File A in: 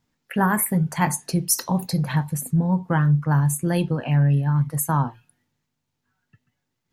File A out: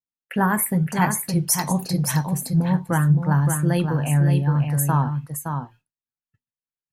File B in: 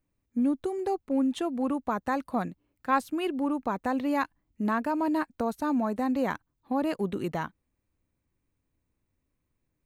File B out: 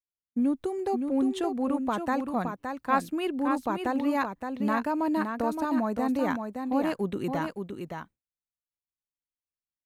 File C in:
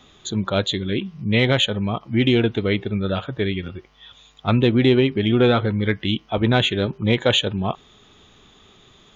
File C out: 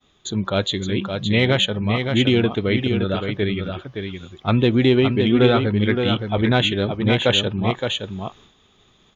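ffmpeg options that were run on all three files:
-af "aecho=1:1:568:0.501,agate=range=0.0224:threshold=0.00631:ratio=3:detection=peak"

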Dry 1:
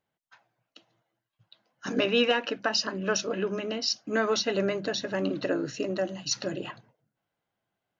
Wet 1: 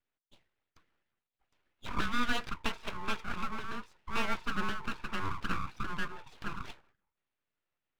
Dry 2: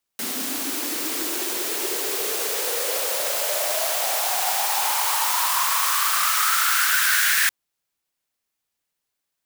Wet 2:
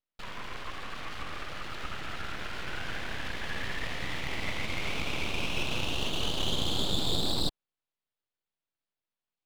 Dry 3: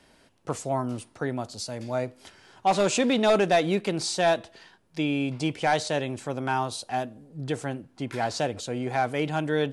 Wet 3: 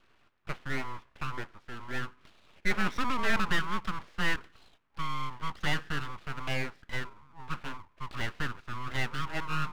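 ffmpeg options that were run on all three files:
-af "highpass=f=170:t=q:w=0.5412,highpass=f=170:t=q:w=1.307,lowpass=f=2300:t=q:w=0.5176,lowpass=f=2300:t=q:w=0.7071,lowpass=f=2300:t=q:w=1.932,afreqshift=250,aeval=exprs='abs(val(0))':c=same,volume=0.708"

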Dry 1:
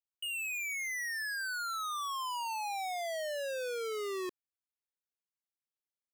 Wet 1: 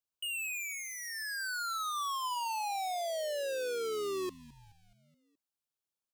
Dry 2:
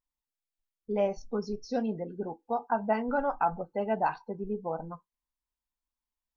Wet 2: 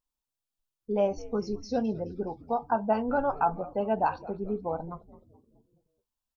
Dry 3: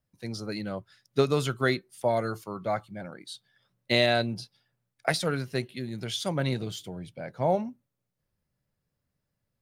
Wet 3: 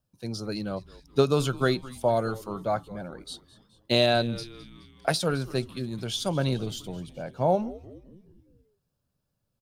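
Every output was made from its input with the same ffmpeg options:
-filter_complex "[0:a]equalizer=f=2000:t=o:w=0.33:g=-13,asplit=6[s0][s1][s2][s3][s4][s5];[s1]adelay=212,afreqshift=-130,volume=0.112[s6];[s2]adelay=424,afreqshift=-260,volume=0.0631[s7];[s3]adelay=636,afreqshift=-390,volume=0.0351[s8];[s4]adelay=848,afreqshift=-520,volume=0.0197[s9];[s5]adelay=1060,afreqshift=-650,volume=0.0111[s10];[s0][s6][s7][s8][s9][s10]amix=inputs=6:normalize=0,volume=1.26"

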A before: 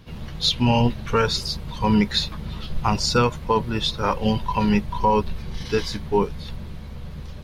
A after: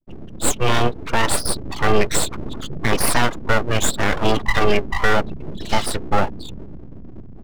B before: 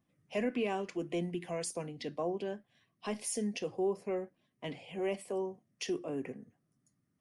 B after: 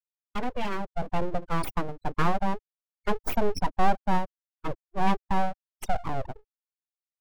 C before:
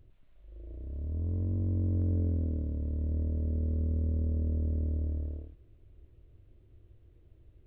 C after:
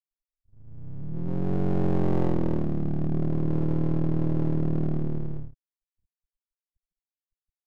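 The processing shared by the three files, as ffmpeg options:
-filter_complex "[0:a]afftfilt=real='re*gte(hypot(re,im),0.0316)':imag='im*gte(hypot(re,im),0.0316)':win_size=1024:overlap=0.75,agate=range=0.0224:threshold=0.01:ratio=3:detection=peak,acrossover=split=140[s0][s1];[s0]acompressor=threshold=0.01:ratio=6[s2];[s2][s1]amix=inputs=2:normalize=0,aeval=exprs='abs(val(0))':c=same,dynaudnorm=f=110:g=21:m=2.82,alimiter=level_in=2.66:limit=0.891:release=50:level=0:latency=1,volume=0.668"

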